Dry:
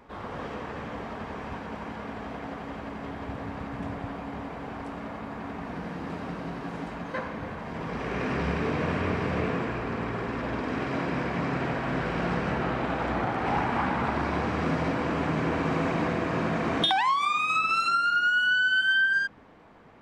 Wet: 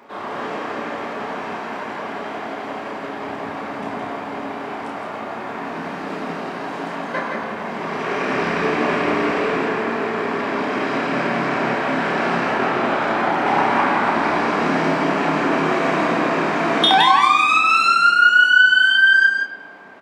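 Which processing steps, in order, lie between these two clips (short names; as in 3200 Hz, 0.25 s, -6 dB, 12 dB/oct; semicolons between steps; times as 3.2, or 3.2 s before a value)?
HPF 290 Hz 12 dB/oct; notch 490 Hz, Q 12; doubler 30 ms -5 dB; echo 0.166 s -4.5 dB; on a send at -11 dB: reverb RT60 2.2 s, pre-delay 3 ms; on the sum: gain +8 dB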